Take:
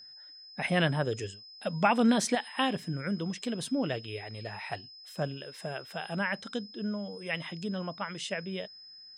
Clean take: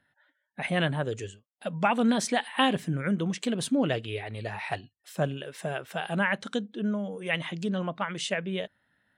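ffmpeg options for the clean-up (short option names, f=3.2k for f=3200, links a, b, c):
-af "bandreject=f=5.1k:w=30,asetnsamples=n=441:p=0,asendcmd='2.35 volume volume 5dB',volume=0dB"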